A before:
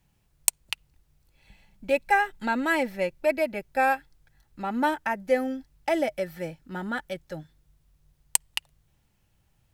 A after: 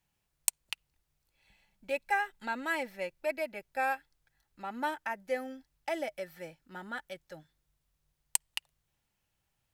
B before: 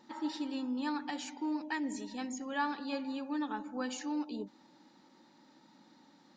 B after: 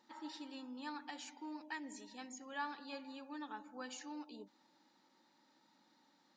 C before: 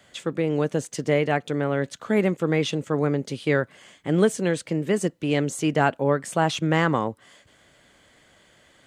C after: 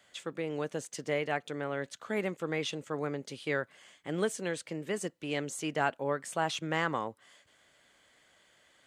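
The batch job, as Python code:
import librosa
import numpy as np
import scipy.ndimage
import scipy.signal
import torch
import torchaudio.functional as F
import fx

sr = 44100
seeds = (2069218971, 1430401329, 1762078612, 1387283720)

y = fx.low_shelf(x, sr, hz=390.0, db=-10.0)
y = y * 10.0 ** (-6.5 / 20.0)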